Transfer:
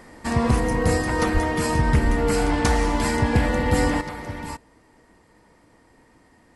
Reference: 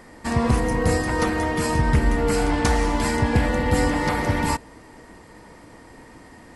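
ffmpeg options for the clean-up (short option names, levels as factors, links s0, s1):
-filter_complex "[0:a]asplit=3[s0][s1][s2];[s0]afade=t=out:st=1.33:d=0.02[s3];[s1]highpass=f=140:w=0.5412,highpass=f=140:w=1.3066,afade=t=in:st=1.33:d=0.02,afade=t=out:st=1.45:d=0.02[s4];[s2]afade=t=in:st=1.45:d=0.02[s5];[s3][s4][s5]amix=inputs=3:normalize=0,asplit=3[s6][s7][s8];[s6]afade=t=out:st=2.04:d=0.02[s9];[s7]highpass=f=140:w=0.5412,highpass=f=140:w=1.3066,afade=t=in:st=2.04:d=0.02,afade=t=out:st=2.16:d=0.02[s10];[s8]afade=t=in:st=2.16:d=0.02[s11];[s9][s10][s11]amix=inputs=3:normalize=0,asetnsamples=n=441:p=0,asendcmd='4.01 volume volume 10.5dB',volume=1"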